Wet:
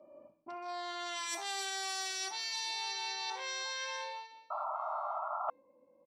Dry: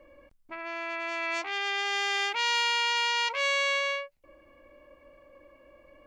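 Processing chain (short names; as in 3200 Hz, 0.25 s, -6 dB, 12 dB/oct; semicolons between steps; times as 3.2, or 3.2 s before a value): Wiener smoothing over 25 samples; Doppler pass-by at 1.43, 20 m/s, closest 7.6 m; low-pass opened by the level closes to 1900 Hz, open at -29.5 dBFS; tilt +4 dB/oct; in parallel at -11 dB: sine folder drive 6 dB, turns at -17.5 dBFS; on the sum: LPF 9500 Hz 12 dB/oct; high shelf 3700 Hz +11 dB; outdoor echo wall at 230 m, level -12 dB; reverb RT60 0.50 s, pre-delay 3 ms, DRR 2 dB; painted sound noise, 4.5–5.5, 590–1400 Hz -17 dBFS; reverse; compressor 5:1, threshold -38 dBFS, peak gain reduction 21.5 dB; reverse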